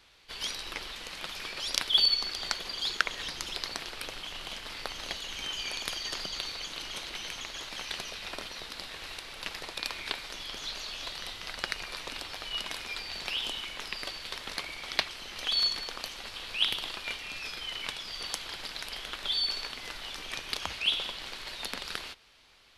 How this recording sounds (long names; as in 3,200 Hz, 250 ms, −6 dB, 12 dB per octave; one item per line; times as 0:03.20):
background noise floor −44 dBFS
spectral slope −2.0 dB per octave